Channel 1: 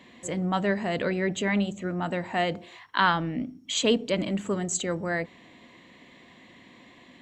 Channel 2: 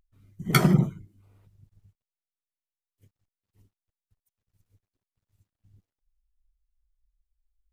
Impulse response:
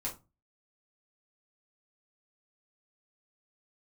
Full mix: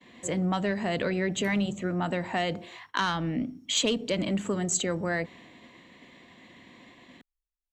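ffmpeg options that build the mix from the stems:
-filter_complex "[0:a]agate=range=-33dB:threshold=-49dB:ratio=3:detection=peak,asoftclip=type=tanh:threshold=-13dB,volume=2dB[a];[1:a]alimiter=limit=-14dB:level=0:latency=1:release=221,adelay=900,volume=-19dB[b];[a][b]amix=inputs=2:normalize=0,acrossover=split=140|3000[c][d][e];[d]acompressor=threshold=-25dB:ratio=6[f];[c][f][e]amix=inputs=3:normalize=0"

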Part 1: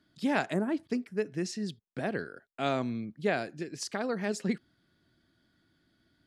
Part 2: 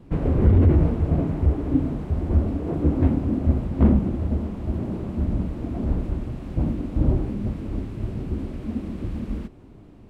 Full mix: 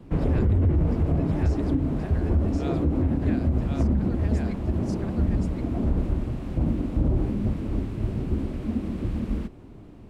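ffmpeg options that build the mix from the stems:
-filter_complex "[0:a]volume=-8.5dB,asplit=2[a][b];[b]volume=-3dB[c];[1:a]volume=1.5dB[d];[c]aecho=0:1:1073:1[e];[a][d][e]amix=inputs=3:normalize=0,acrossover=split=140[f][g];[g]acompressor=threshold=-22dB:ratio=2.5[h];[f][h]amix=inputs=2:normalize=0,alimiter=limit=-14.5dB:level=0:latency=1:release=57"

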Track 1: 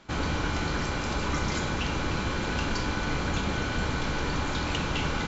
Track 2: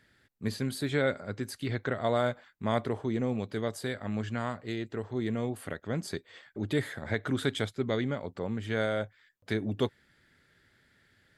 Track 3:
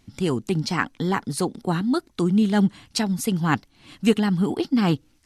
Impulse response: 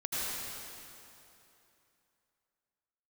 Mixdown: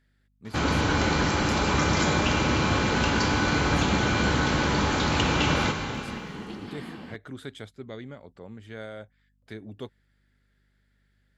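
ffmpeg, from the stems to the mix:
-filter_complex "[0:a]highpass=68,adelay=450,volume=3dB,asplit=2[a][b];[b]volume=-9dB[c];[1:a]deesser=0.75,aeval=exprs='val(0)+0.00126*(sin(2*PI*50*n/s)+sin(2*PI*2*50*n/s)/2+sin(2*PI*3*50*n/s)/3+sin(2*PI*4*50*n/s)/4+sin(2*PI*5*50*n/s)/5)':c=same,volume=-9.5dB,asplit=2[d][e];[2:a]deesser=0.75,acrossover=split=950|4500[f][g][h];[f]acompressor=threshold=-29dB:ratio=4[i];[g]acompressor=threshold=-33dB:ratio=4[j];[h]acompressor=threshold=-56dB:ratio=4[k];[i][j][k]amix=inputs=3:normalize=0,adelay=1900,volume=-12.5dB,asplit=2[l][m];[m]volume=-4dB[n];[e]apad=whole_len=315713[o];[l][o]sidechaincompress=threshold=-46dB:ratio=8:attack=16:release=674[p];[3:a]atrim=start_sample=2205[q];[c][n]amix=inputs=2:normalize=0[r];[r][q]afir=irnorm=-1:irlink=0[s];[a][d][p][s]amix=inputs=4:normalize=0"

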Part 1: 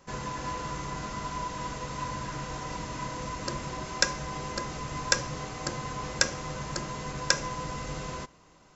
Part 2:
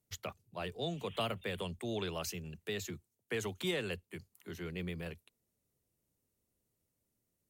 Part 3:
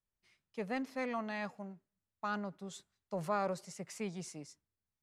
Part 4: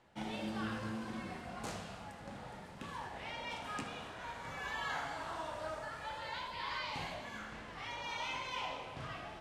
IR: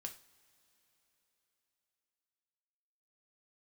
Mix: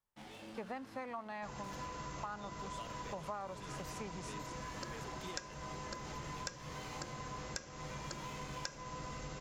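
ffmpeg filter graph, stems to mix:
-filter_complex "[0:a]adelay=1350,volume=-6.5dB[a];[1:a]adelay=1600,volume=-11dB[b];[2:a]equalizer=f=950:t=o:w=1.2:g=10.5,volume=-1.5dB[c];[3:a]asoftclip=type=tanh:threshold=-38dB,acrusher=bits=6:mix=0:aa=0.5,flanger=delay=19.5:depth=5.7:speed=0.43,volume=-8dB,asplit=2[d][e];[e]volume=-4dB[f];[4:a]atrim=start_sample=2205[g];[f][g]afir=irnorm=-1:irlink=0[h];[a][b][c][d][h]amix=inputs=5:normalize=0,acompressor=threshold=-41dB:ratio=5"

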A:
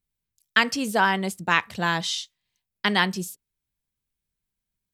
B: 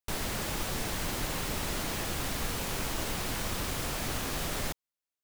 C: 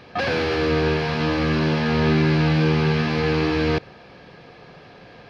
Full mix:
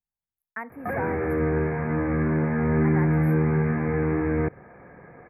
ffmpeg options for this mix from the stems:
-filter_complex "[0:a]equalizer=f=810:t=o:w=0.86:g=10.5,volume=-13.5dB,asplit=3[a][b][c];[a]atrim=end=1.46,asetpts=PTS-STARTPTS,afade=t=out:st=1.456:d=0.004:c=hsin[d];[b]atrim=start=1.46:end=2.57,asetpts=PTS-STARTPTS,volume=0[e];[c]atrim=start=2.57,asetpts=PTS-STARTPTS,afade=t=in:d=0.004:c=hsin[f];[d][e][f]concat=n=3:v=0:a=1[g];[2:a]adelay=700,volume=-2dB[h];[g][h]amix=inputs=2:normalize=0,acrossover=split=460|3000[i][j][k];[j]acompressor=threshold=-39dB:ratio=1.5[l];[i][l][k]amix=inputs=3:normalize=0,asuperstop=centerf=5300:order=20:qfactor=0.6"

